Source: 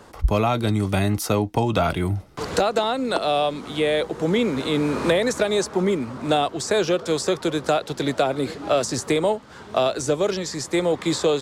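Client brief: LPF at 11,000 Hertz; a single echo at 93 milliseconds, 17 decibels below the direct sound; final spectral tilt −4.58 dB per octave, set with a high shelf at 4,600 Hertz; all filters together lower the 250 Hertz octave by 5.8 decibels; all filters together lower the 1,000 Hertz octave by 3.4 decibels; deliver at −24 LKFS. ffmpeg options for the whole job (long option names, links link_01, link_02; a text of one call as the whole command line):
ffmpeg -i in.wav -af "lowpass=11000,equalizer=frequency=250:width_type=o:gain=-8,equalizer=frequency=1000:width_type=o:gain=-4,highshelf=frequency=4600:gain=-9,aecho=1:1:93:0.141,volume=2dB" out.wav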